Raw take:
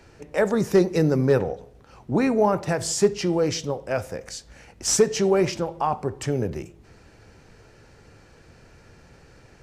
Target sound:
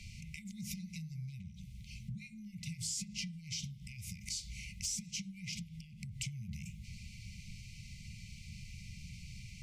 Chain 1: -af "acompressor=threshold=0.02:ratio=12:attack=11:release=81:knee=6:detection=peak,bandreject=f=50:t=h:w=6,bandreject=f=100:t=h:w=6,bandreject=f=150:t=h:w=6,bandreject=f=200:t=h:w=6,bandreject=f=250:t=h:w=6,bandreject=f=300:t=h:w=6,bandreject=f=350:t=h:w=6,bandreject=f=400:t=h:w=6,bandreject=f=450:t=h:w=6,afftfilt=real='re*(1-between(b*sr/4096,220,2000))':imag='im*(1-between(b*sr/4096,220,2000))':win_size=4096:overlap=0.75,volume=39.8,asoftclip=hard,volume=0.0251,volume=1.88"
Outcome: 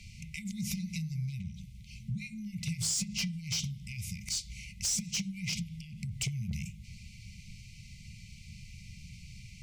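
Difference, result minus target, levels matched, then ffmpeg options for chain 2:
compression: peak gain reduction -8.5 dB
-af "acompressor=threshold=0.00708:ratio=12:attack=11:release=81:knee=6:detection=peak,bandreject=f=50:t=h:w=6,bandreject=f=100:t=h:w=6,bandreject=f=150:t=h:w=6,bandreject=f=200:t=h:w=6,bandreject=f=250:t=h:w=6,bandreject=f=300:t=h:w=6,bandreject=f=350:t=h:w=6,bandreject=f=400:t=h:w=6,bandreject=f=450:t=h:w=6,afftfilt=real='re*(1-between(b*sr/4096,220,2000))':imag='im*(1-between(b*sr/4096,220,2000))':win_size=4096:overlap=0.75,volume=39.8,asoftclip=hard,volume=0.0251,volume=1.88"

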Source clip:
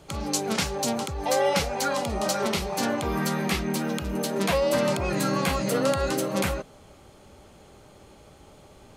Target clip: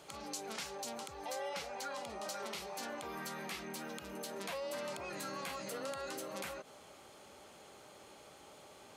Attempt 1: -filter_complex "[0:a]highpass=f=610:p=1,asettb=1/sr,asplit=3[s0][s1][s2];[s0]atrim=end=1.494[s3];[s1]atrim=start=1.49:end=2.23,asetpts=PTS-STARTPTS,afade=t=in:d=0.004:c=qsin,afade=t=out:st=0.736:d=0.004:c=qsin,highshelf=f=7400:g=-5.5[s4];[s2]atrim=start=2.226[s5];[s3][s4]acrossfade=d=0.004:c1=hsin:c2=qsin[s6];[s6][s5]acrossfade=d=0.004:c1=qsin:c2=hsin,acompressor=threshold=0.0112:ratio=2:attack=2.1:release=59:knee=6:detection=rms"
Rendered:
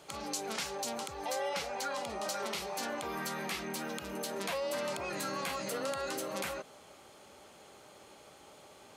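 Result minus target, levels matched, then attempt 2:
compression: peak gain reduction -5.5 dB
-filter_complex "[0:a]highpass=f=610:p=1,asettb=1/sr,asplit=3[s0][s1][s2];[s0]atrim=end=1.494[s3];[s1]atrim=start=1.49:end=2.23,asetpts=PTS-STARTPTS,afade=t=in:d=0.004:c=qsin,afade=t=out:st=0.736:d=0.004:c=qsin,highshelf=f=7400:g=-5.5[s4];[s2]atrim=start=2.226[s5];[s3][s4]acrossfade=d=0.004:c1=hsin:c2=qsin[s6];[s6][s5]acrossfade=d=0.004:c1=qsin:c2=hsin,acompressor=threshold=0.00299:ratio=2:attack=2.1:release=59:knee=6:detection=rms"

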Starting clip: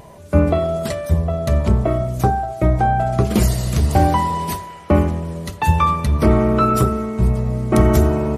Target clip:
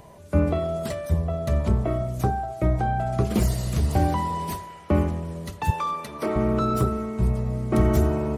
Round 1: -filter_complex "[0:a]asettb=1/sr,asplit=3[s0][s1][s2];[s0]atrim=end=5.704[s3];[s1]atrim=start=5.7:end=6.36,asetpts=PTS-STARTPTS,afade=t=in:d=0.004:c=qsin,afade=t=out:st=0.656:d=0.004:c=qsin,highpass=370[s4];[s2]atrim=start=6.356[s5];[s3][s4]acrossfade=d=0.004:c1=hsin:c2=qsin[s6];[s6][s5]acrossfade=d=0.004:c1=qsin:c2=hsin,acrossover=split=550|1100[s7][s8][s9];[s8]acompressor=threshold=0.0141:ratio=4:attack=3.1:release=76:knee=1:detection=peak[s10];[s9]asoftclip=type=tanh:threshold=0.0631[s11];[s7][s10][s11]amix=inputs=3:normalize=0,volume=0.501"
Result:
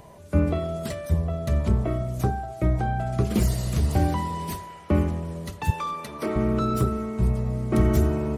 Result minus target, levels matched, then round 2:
compression: peak gain reduction +9 dB
-filter_complex "[0:a]asettb=1/sr,asplit=3[s0][s1][s2];[s0]atrim=end=5.704[s3];[s1]atrim=start=5.7:end=6.36,asetpts=PTS-STARTPTS,afade=t=in:d=0.004:c=qsin,afade=t=out:st=0.656:d=0.004:c=qsin,highpass=370[s4];[s2]atrim=start=6.356[s5];[s3][s4]acrossfade=d=0.004:c1=hsin:c2=qsin[s6];[s6][s5]acrossfade=d=0.004:c1=qsin:c2=hsin,acrossover=split=550|1100[s7][s8][s9];[s8]acompressor=threshold=0.0562:ratio=4:attack=3.1:release=76:knee=1:detection=peak[s10];[s9]asoftclip=type=tanh:threshold=0.0631[s11];[s7][s10][s11]amix=inputs=3:normalize=0,volume=0.501"

